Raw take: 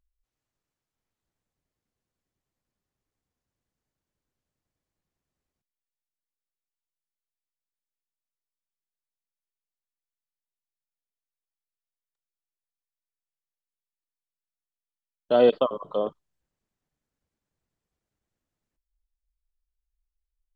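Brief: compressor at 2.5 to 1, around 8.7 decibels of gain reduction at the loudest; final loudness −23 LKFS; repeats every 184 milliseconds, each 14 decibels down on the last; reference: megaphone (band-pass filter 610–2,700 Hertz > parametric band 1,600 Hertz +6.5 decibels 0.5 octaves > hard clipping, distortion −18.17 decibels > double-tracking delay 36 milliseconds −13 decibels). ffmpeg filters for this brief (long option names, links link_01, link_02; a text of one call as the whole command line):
ffmpeg -i in.wav -filter_complex "[0:a]acompressor=threshold=-26dB:ratio=2.5,highpass=610,lowpass=2700,equalizer=frequency=1600:width_type=o:width=0.5:gain=6.5,aecho=1:1:184|368:0.2|0.0399,asoftclip=type=hard:threshold=-24.5dB,asplit=2[link_01][link_02];[link_02]adelay=36,volume=-13dB[link_03];[link_01][link_03]amix=inputs=2:normalize=0,volume=11.5dB" out.wav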